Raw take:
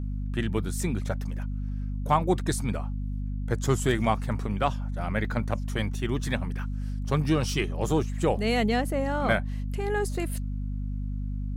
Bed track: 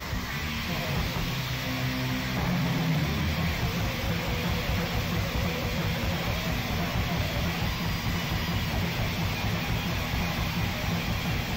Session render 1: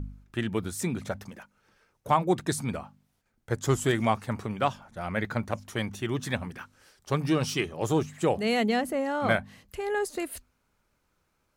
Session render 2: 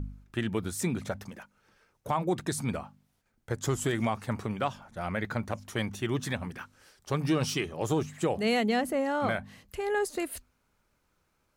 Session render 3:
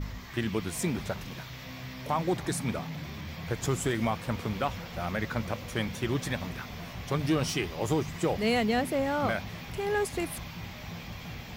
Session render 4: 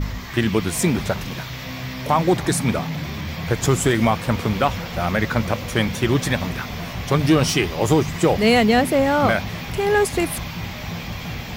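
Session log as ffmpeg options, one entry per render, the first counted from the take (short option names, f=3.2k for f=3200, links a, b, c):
-af "bandreject=f=50:t=h:w=4,bandreject=f=100:t=h:w=4,bandreject=f=150:t=h:w=4,bandreject=f=200:t=h:w=4,bandreject=f=250:t=h:w=4"
-af "alimiter=limit=-18dB:level=0:latency=1:release=97"
-filter_complex "[1:a]volume=-12dB[a];[0:a][a]amix=inputs=2:normalize=0"
-af "volume=11dB"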